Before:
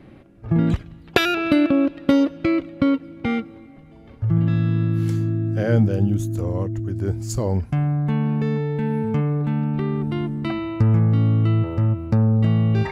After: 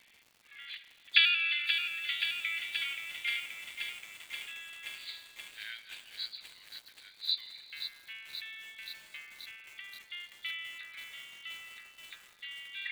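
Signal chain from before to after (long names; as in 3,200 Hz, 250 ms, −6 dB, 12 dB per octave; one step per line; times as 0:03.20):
hearing-aid frequency compression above 3,300 Hz 4 to 1
Butterworth high-pass 2,000 Hz 36 dB per octave
surface crackle 250 per second −49 dBFS
convolution reverb RT60 3.5 s, pre-delay 88 ms, DRR 12.5 dB
feedback echo at a low word length 528 ms, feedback 80%, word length 8 bits, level −7.5 dB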